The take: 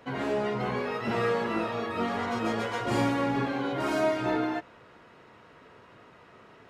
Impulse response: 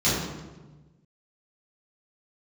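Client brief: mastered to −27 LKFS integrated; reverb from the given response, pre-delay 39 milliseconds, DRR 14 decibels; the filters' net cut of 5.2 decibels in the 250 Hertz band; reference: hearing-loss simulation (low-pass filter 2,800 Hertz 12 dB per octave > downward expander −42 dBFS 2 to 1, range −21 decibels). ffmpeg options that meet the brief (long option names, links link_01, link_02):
-filter_complex "[0:a]equalizer=frequency=250:width_type=o:gain=-6.5,asplit=2[link_01][link_02];[1:a]atrim=start_sample=2205,adelay=39[link_03];[link_02][link_03]afir=irnorm=-1:irlink=0,volume=-29.5dB[link_04];[link_01][link_04]amix=inputs=2:normalize=0,lowpass=2800,agate=range=-21dB:threshold=-42dB:ratio=2,volume=3.5dB"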